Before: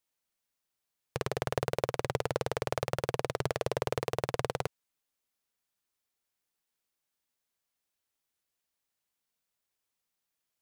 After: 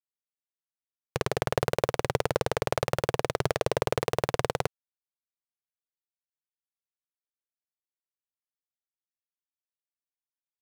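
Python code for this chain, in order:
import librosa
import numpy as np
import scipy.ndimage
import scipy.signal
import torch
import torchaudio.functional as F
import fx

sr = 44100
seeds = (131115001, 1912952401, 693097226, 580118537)

y = fx.law_mismatch(x, sr, coded='A')
y = F.gain(torch.from_numpy(y), 5.5).numpy()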